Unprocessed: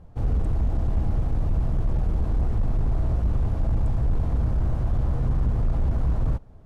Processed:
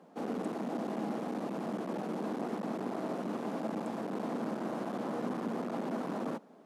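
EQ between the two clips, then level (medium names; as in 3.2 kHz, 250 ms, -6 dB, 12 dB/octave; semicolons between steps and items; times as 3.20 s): steep high-pass 200 Hz 48 dB/octave; +2.0 dB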